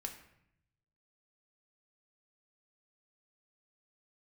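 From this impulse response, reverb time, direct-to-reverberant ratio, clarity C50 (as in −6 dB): 0.75 s, 2.5 dB, 9.0 dB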